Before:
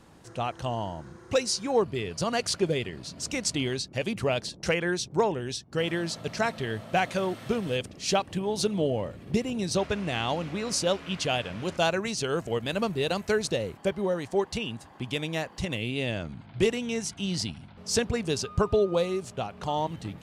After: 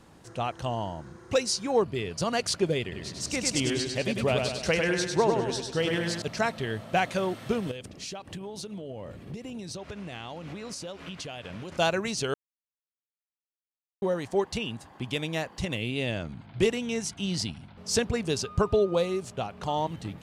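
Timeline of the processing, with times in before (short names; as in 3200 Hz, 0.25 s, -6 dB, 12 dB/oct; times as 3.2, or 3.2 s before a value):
2.82–6.22 feedback echo 0.1 s, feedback 52%, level -4 dB
7.71–11.72 compressor 20:1, threshold -34 dBFS
12.34–14.02 mute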